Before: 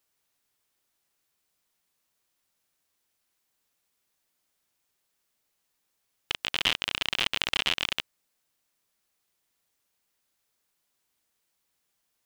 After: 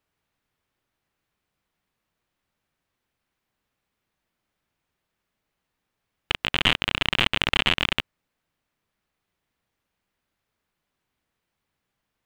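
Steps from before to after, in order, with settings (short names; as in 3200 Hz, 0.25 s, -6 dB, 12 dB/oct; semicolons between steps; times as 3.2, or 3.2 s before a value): tone controls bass +7 dB, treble -14 dB; sample leveller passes 1; gain +5 dB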